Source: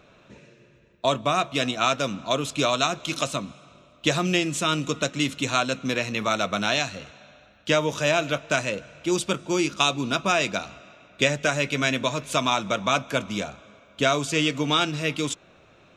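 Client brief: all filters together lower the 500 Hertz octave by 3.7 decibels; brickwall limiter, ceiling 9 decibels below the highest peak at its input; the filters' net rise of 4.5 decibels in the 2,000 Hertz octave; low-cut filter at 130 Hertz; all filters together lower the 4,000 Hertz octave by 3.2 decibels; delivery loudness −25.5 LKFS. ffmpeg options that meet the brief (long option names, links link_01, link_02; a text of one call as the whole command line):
ffmpeg -i in.wav -af "highpass=130,equalizer=frequency=500:width_type=o:gain=-5.5,equalizer=frequency=2000:width_type=o:gain=9,equalizer=frequency=4000:width_type=o:gain=-7.5,volume=0.5dB,alimiter=limit=-12dB:level=0:latency=1" out.wav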